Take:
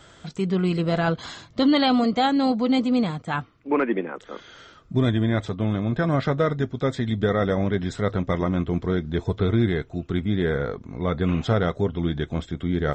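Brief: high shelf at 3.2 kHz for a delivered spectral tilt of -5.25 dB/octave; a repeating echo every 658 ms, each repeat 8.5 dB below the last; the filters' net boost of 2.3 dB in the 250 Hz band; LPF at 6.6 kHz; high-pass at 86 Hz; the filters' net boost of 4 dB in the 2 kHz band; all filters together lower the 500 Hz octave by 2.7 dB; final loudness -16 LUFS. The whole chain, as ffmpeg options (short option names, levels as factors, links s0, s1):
-af "highpass=86,lowpass=6600,equalizer=f=250:t=o:g=4,equalizer=f=500:t=o:g=-5,equalizer=f=2000:t=o:g=4,highshelf=f=3200:g=4.5,aecho=1:1:658|1316|1974|2632:0.376|0.143|0.0543|0.0206,volume=2.11"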